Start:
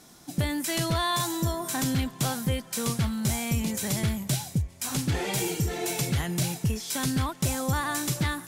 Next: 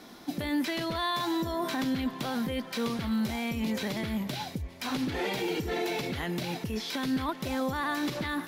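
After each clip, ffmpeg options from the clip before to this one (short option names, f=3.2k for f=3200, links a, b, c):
-filter_complex "[0:a]acrossover=split=6000[a][b];[a]alimiter=level_in=4.5dB:limit=-24dB:level=0:latency=1:release=39,volume=-4.5dB[c];[b]acompressor=threshold=-45dB:ratio=6[d];[c][d]amix=inputs=2:normalize=0,equalizer=f=125:t=o:w=1:g=-7,equalizer=f=250:t=o:w=1:g=8,equalizer=f=500:t=o:w=1:g=5,equalizer=f=1k:t=o:w=1:g=4,equalizer=f=2k:t=o:w=1:g=5,equalizer=f=4k:t=o:w=1:g=6,equalizer=f=8k:t=o:w=1:g=-11"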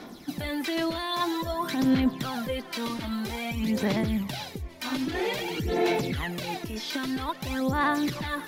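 -af "aphaser=in_gain=1:out_gain=1:delay=3.3:decay=0.59:speed=0.51:type=sinusoidal"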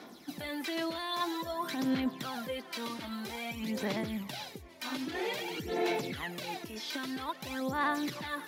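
-af "highpass=f=270:p=1,volume=-5dB"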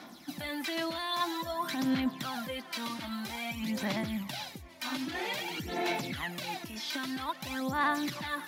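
-af "equalizer=f=430:w=3.3:g=-12.5,volume=2.5dB"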